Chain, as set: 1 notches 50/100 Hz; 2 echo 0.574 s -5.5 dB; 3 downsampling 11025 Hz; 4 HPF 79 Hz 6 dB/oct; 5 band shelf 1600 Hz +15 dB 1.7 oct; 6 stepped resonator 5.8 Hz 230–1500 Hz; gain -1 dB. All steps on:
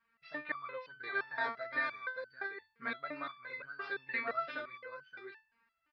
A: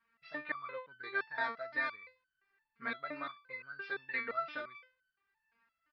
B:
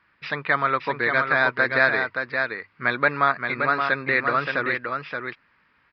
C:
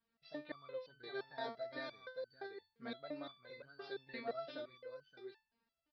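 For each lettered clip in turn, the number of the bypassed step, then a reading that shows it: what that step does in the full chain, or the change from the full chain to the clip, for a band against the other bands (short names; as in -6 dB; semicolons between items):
2, momentary loudness spread change -2 LU; 6, 125 Hz band +11.5 dB; 5, momentary loudness spread change -2 LU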